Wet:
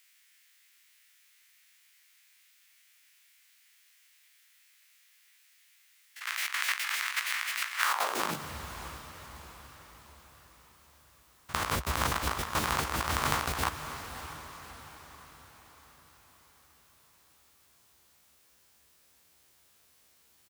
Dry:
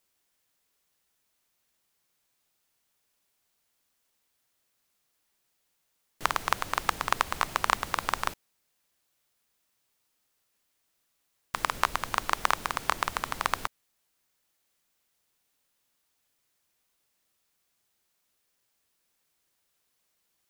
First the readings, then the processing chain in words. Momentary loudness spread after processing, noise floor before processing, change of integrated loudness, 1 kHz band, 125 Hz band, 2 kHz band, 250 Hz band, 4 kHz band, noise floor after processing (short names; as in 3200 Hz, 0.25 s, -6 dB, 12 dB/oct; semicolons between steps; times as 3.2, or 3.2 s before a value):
19 LU, -76 dBFS, -2.0 dB, -4.0 dB, +8.0 dB, +0.5 dB, +4.5 dB, +1.5 dB, -65 dBFS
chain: stepped spectrum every 50 ms; negative-ratio compressor -39 dBFS, ratio -0.5; doubler 13 ms -12 dB; on a send: diffused feedback echo 0.613 s, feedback 49%, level -11 dB; on the sum: high-pass sweep 2000 Hz -> 62 Hz, 7.77–8.57; gain +7.5 dB